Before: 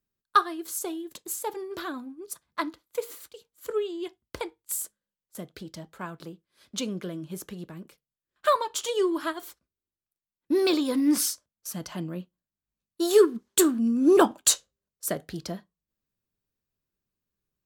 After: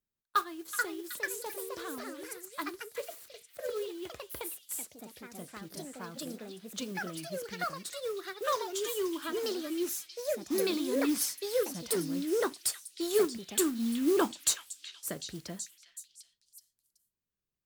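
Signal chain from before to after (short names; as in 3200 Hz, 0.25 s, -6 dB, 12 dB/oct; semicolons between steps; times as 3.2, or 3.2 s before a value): dynamic EQ 660 Hz, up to -6 dB, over -39 dBFS, Q 1.5; modulation noise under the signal 18 dB; on a send: delay with a stepping band-pass 0.375 s, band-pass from 2500 Hz, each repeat 0.7 oct, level -5.5 dB; on the sum: echoes that change speed 0.49 s, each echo +3 st, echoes 2; gain -7 dB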